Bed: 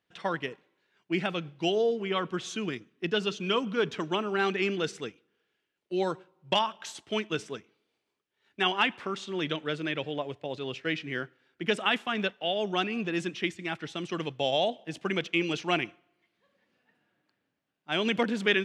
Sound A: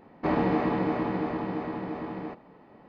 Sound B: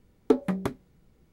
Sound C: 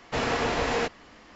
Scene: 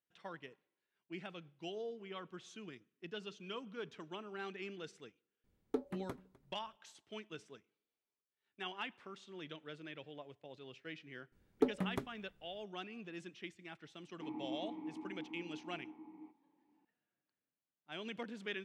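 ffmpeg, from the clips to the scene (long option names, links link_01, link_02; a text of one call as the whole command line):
ffmpeg -i bed.wav -i cue0.wav -i cue1.wav -filter_complex "[2:a]asplit=2[link_01][link_02];[0:a]volume=-17.5dB[link_03];[link_01]aecho=1:1:253|506:0.0794|0.0127[link_04];[1:a]asplit=3[link_05][link_06][link_07];[link_05]bandpass=frequency=300:width_type=q:width=8,volume=0dB[link_08];[link_06]bandpass=frequency=870:width_type=q:width=8,volume=-6dB[link_09];[link_07]bandpass=frequency=2240:width_type=q:width=8,volume=-9dB[link_10];[link_08][link_09][link_10]amix=inputs=3:normalize=0[link_11];[link_04]atrim=end=1.32,asetpts=PTS-STARTPTS,volume=-15.5dB,afade=type=in:duration=0.004:curve=hsin,afade=type=out:start_time=1.316:duration=0.004:curve=hsin,adelay=5440[link_12];[link_02]atrim=end=1.32,asetpts=PTS-STARTPTS,volume=-10dB,afade=type=in:duration=0.004:curve=hsin,afade=type=out:start_time=1.316:duration=0.004:curve=hsin,adelay=11320[link_13];[link_11]atrim=end=2.88,asetpts=PTS-STARTPTS,volume=-12.5dB,afade=type=in:duration=0.004:curve=hsin,afade=type=out:start_time=2.876:duration=0.004:curve=hsin,adelay=13970[link_14];[link_03][link_12][link_13][link_14]amix=inputs=4:normalize=0" out.wav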